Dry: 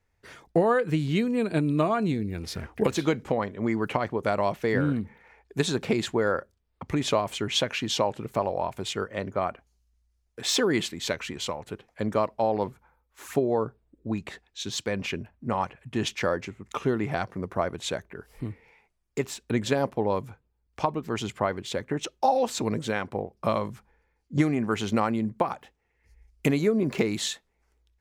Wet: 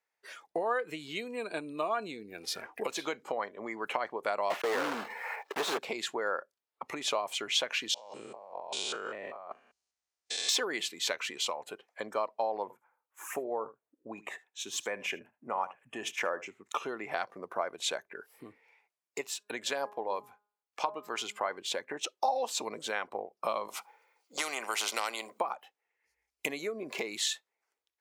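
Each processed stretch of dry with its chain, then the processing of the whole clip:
0:04.50–0:05.79: one scale factor per block 3 bits + dynamic equaliser 2,100 Hz, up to −4 dB, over −40 dBFS, Q 0.9 + mid-hump overdrive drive 27 dB, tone 1,200 Hz, clips at −11 dBFS
0:07.94–0:10.49: spectrum averaged block by block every 200 ms + compressor whose output falls as the input rises −37 dBFS, ratio −0.5 + linear-phase brick-wall low-pass 10,000 Hz
0:12.62–0:16.46: parametric band 4,300 Hz −12 dB 0.68 octaves + single-tap delay 76 ms −17.5 dB
0:19.21–0:21.51: low-shelf EQ 500 Hz −4 dB + hum removal 206.9 Hz, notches 8
0:23.68–0:25.39: high-pass filter 390 Hz + notch filter 1,700 Hz, Q 5.1 + every bin compressed towards the loudest bin 2 to 1
whole clip: downward compressor 2 to 1, threshold −32 dBFS; high-pass filter 600 Hz 12 dB per octave; noise reduction from a noise print of the clip's start 9 dB; level +2.5 dB

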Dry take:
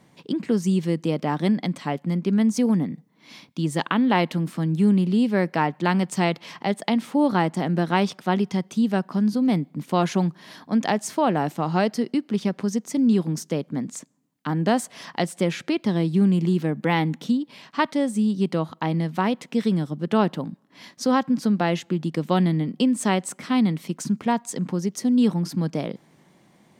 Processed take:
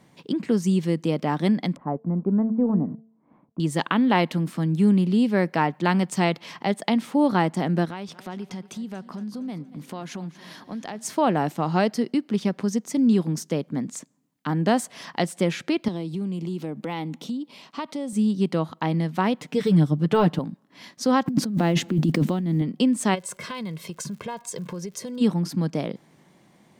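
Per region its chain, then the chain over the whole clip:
0:01.76–0:03.60: mu-law and A-law mismatch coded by A + low-pass filter 1,100 Hz 24 dB per octave + hum removal 223 Hz, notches 3
0:07.85–0:11.05: downward compressor 3 to 1, threshold −34 dBFS + repeating echo 233 ms, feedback 49%, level −16.5 dB
0:15.88–0:18.13: high-pass filter 170 Hz + parametric band 1,700 Hz −9 dB 0.45 octaves + downward compressor 3 to 1, threshold −28 dBFS
0:19.41–0:20.39: de-essing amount 90% + low-shelf EQ 110 Hz +11.5 dB + comb filter 6.7 ms, depth 72%
0:21.26–0:22.62: one scale factor per block 7 bits + parametric band 230 Hz +10 dB 1.7 octaves + compressor whose output falls as the input rises −22 dBFS
0:23.14–0:25.20: comb filter 1.9 ms, depth 85% + downward compressor, threshold −29 dBFS + surface crackle 140 per second −43 dBFS
whole clip: no processing

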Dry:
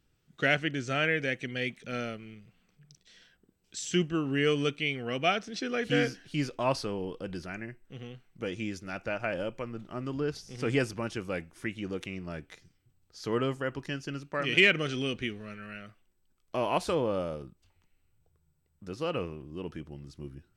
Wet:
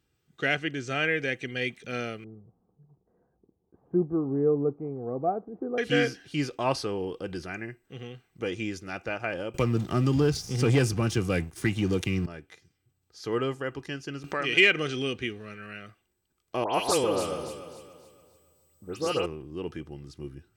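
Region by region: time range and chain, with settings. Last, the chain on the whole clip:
0:02.24–0:05.78: one scale factor per block 5 bits + Butterworth low-pass 970 Hz
0:09.54–0:12.26: bass and treble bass +11 dB, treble +7 dB + leveller curve on the samples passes 2 + multiband upward and downward compressor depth 40%
0:14.24–0:14.80: low-shelf EQ 210 Hz −7 dB + upward compression, threshold −24 dBFS
0:16.64–0:19.26: bass and treble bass −3 dB, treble +13 dB + all-pass dispersion highs, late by 104 ms, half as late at 2,700 Hz + delay that swaps between a low-pass and a high-pass 141 ms, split 1,700 Hz, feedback 61%, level −5 dB
whole clip: high-pass filter 66 Hz; comb filter 2.5 ms, depth 31%; speech leveller within 3 dB 2 s

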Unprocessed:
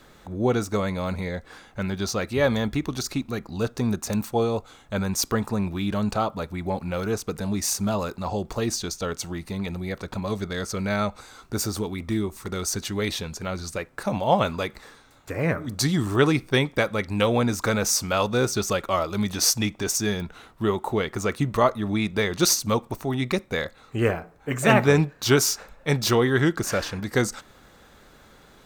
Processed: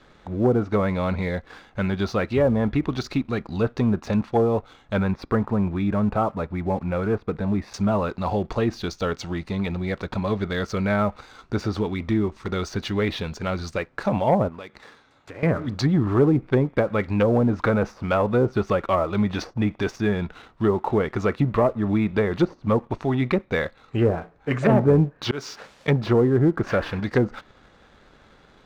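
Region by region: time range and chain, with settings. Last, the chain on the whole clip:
0:05.11–0:07.74: high-frequency loss of the air 350 metres + notch filter 3,000 Hz, Q 5.3
0:14.48–0:15.43: high-pass filter 120 Hz 6 dB per octave + downward compressor 3 to 1, threshold −41 dBFS
0:25.23–0:25.88: high-pass filter 120 Hz + bit-depth reduction 8 bits, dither triangular + volume swells 303 ms
whole clip: treble cut that deepens with the level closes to 640 Hz, closed at −17 dBFS; low-pass filter 4,300 Hz 12 dB per octave; leveller curve on the samples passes 1

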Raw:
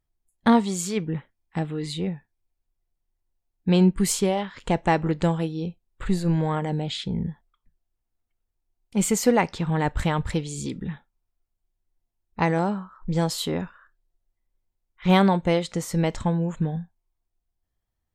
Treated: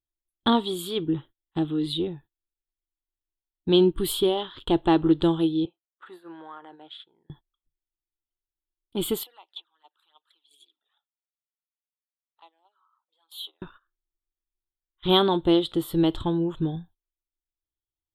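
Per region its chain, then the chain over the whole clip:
0:05.65–0:07.30: high-pass filter 860 Hz + high shelf with overshoot 2,500 Hz −12 dB, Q 1.5 + downward compressor 2 to 1, threshold −43 dBFS
0:09.23–0:13.62: downward compressor, threshold −35 dBFS + high-pass filter 730 Hz 24 dB per octave + flanger swept by the level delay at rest 3.1 ms, full sweep at −40 dBFS
whole clip: noise gate −45 dBFS, range −17 dB; drawn EQ curve 140 Hz 0 dB, 200 Hz −11 dB, 330 Hz +10 dB, 500 Hz −6 dB, 1,300 Hz 0 dB, 2,200 Hz −14 dB, 3,400 Hz +12 dB, 6,100 Hz −24 dB, 11,000 Hz +4 dB

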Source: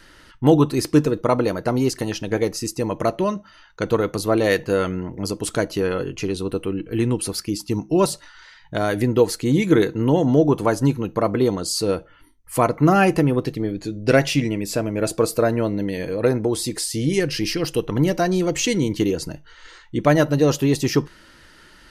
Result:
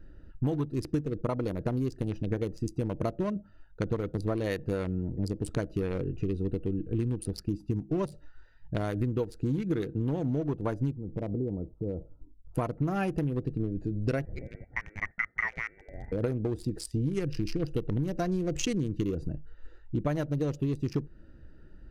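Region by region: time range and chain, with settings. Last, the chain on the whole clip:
0:10.91–0:12.55: Butterworth low-pass 1,200 Hz 72 dB per octave + downward compressor 2 to 1, threshold −30 dBFS
0:14.25–0:16.12: high-pass filter 460 Hz + voice inversion scrambler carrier 2,500 Hz
whole clip: adaptive Wiener filter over 41 samples; low-shelf EQ 130 Hz +12 dB; downward compressor 12 to 1, threshold −21 dBFS; level −4.5 dB

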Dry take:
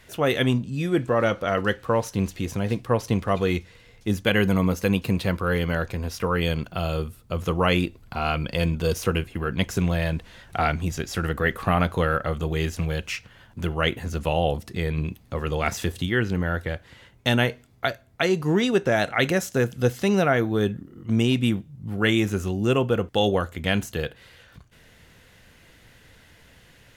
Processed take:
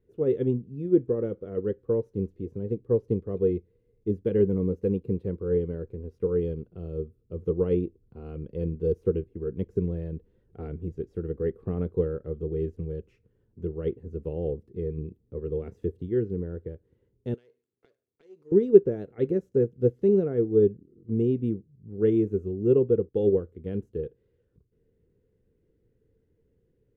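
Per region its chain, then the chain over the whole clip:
0:17.34–0:18.52: gain on one half-wave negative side −12 dB + meter weighting curve ITU-R 468 + downward compressor 2 to 1, threshold −37 dBFS
whole clip: drawn EQ curve 270 Hz 0 dB, 440 Hz +10 dB, 640 Hz −16 dB, 5,100 Hz −30 dB; expander for the loud parts 1.5 to 1, over −37 dBFS

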